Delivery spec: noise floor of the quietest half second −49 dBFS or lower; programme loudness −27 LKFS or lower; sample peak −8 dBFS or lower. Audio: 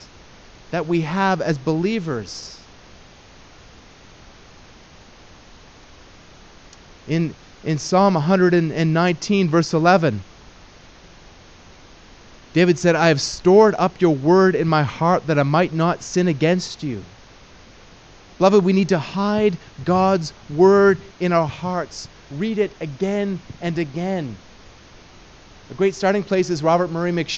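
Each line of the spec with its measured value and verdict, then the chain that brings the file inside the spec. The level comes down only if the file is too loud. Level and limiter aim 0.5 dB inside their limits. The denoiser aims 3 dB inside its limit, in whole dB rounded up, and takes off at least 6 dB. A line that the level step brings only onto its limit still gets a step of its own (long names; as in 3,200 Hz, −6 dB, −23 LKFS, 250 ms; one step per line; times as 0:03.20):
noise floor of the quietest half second −46 dBFS: out of spec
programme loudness −19.0 LKFS: out of spec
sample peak −2.5 dBFS: out of spec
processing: level −8.5 dB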